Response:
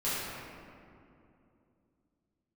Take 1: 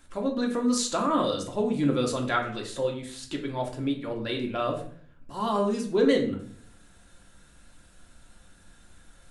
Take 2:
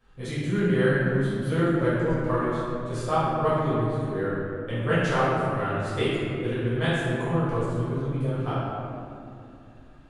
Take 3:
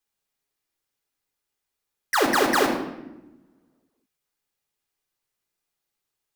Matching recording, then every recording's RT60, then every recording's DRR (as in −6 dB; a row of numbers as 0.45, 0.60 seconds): 2; 0.55, 2.7, 1.0 seconds; 0.5, −12.5, 1.0 decibels